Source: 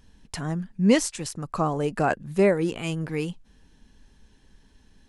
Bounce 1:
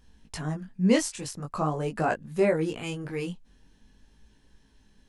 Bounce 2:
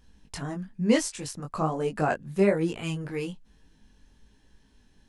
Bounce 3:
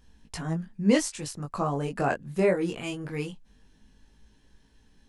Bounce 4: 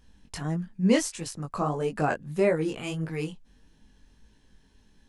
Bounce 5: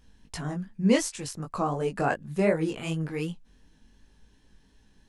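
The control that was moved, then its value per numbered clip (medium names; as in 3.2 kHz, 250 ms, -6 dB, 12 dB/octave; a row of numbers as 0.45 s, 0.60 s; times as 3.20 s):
chorus, rate: 0.45 Hz, 1.1 Hz, 0.21 Hz, 1.6 Hz, 2.7 Hz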